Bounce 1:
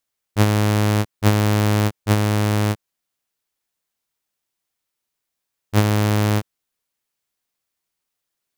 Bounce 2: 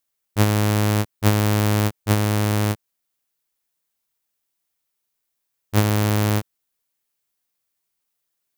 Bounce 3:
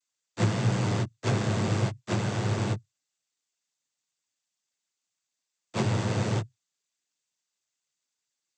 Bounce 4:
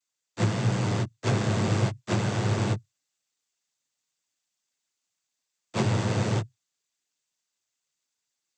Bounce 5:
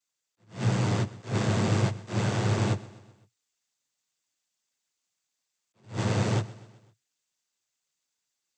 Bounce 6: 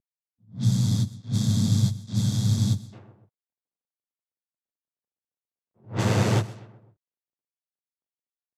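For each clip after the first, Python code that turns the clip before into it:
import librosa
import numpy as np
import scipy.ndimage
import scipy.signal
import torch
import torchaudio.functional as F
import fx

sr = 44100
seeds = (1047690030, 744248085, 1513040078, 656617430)

y1 = fx.high_shelf(x, sr, hz=10000.0, db=7.5)
y1 = F.gain(torch.from_numpy(y1), -1.5).numpy()
y2 = fx.noise_vocoder(y1, sr, seeds[0], bands=16)
y2 = F.gain(torch.from_numpy(y2), -7.0).numpy()
y3 = fx.rider(y2, sr, range_db=10, speed_s=2.0)
y3 = F.gain(torch.from_numpy(y3), 2.0).numpy()
y4 = fx.echo_feedback(y3, sr, ms=127, feedback_pct=54, wet_db=-19.0)
y4 = fx.attack_slew(y4, sr, db_per_s=200.0)
y5 = fx.cvsd(y4, sr, bps=64000)
y5 = fx.env_lowpass(y5, sr, base_hz=650.0, full_db=-26.5)
y5 = fx.spec_box(y5, sr, start_s=0.34, length_s=2.59, low_hz=280.0, high_hz=3200.0, gain_db=-19)
y5 = F.gain(torch.from_numpy(y5), 4.5).numpy()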